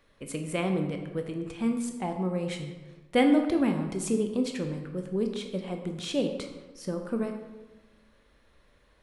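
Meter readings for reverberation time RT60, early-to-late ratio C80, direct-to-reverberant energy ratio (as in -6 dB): 1.2 s, 8.5 dB, 4.5 dB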